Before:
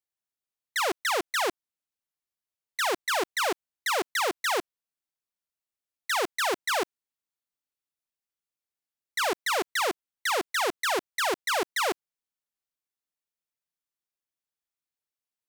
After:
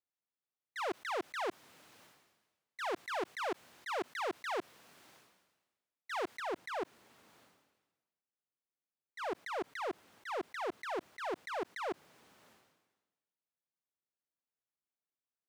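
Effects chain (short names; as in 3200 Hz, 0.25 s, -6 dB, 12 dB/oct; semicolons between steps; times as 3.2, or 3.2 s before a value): limiter -27.5 dBFS, peak gain reduction 6.5 dB; HPF 120 Hz 12 dB/oct; transient shaper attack -5 dB, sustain +1 dB; LPF 1800 Hz 6 dB/oct, from 6.4 s 1000 Hz; sustainer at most 48 dB/s; gain -1 dB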